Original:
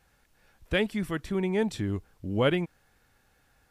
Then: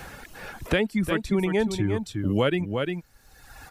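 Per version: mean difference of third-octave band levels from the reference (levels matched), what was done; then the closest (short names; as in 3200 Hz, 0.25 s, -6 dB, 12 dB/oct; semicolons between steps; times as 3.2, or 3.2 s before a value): 5.0 dB: reverb removal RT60 1.4 s; in parallel at -2.5 dB: limiter -22 dBFS, peak gain reduction 9.5 dB; on the sum: echo 0.352 s -9 dB; three-band squash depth 70%; gain +1.5 dB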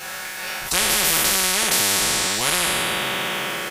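19.0 dB: spectral trails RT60 1.79 s; HPF 1100 Hz 6 dB/oct; comb 5.4 ms, depth 90%; spectral compressor 10:1; gain +6.5 dB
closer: first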